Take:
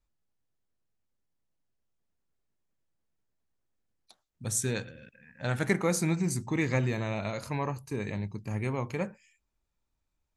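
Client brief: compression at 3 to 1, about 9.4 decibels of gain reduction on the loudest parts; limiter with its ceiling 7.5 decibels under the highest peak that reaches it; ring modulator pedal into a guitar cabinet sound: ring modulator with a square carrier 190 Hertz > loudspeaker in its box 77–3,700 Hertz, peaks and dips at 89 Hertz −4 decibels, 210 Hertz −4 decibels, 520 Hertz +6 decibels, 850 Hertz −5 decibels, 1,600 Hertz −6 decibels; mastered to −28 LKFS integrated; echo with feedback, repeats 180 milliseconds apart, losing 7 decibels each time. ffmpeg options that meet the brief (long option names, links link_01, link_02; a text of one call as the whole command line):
ffmpeg -i in.wav -af "acompressor=threshold=-35dB:ratio=3,alimiter=level_in=5dB:limit=-24dB:level=0:latency=1,volume=-5dB,aecho=1:1:180|360|540|720|900:0.447|0.201|0.0905|0.0407|0.0183,aeval=exprs='val(0)*sgn(sin(2*PI*190*n/s))':channel_layout=same,highpass=77,equalizer=frequency=89:width_type=q:width=4:gain=-4,equalizer=frequency=210:width_type=q:width=4:gain=-4,equalizer=frequency=520:width_type=q:width=4:gain=6,equalizer=frequency=850:width_type=q:width=4:gain=-5,equalizer=frequency=1600:width_type=q:width=4:gain=-6,lowpass=frequency=3700:width=0.5412,lowpass=frequency=3700:width=1.3066,volume=13dB" out.wav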